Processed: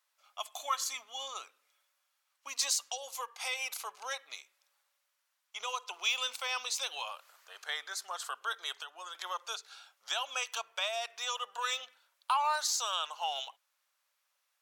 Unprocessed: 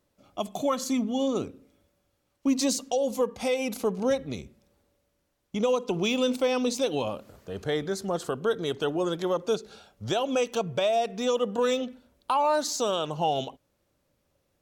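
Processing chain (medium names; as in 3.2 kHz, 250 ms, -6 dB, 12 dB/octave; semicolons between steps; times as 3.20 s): high-pass 1 kHz 24 dB/octave; 8.72–9.15 s: compression 5:1, threshold -42 dBFS, peak gain reduction 10.5 dB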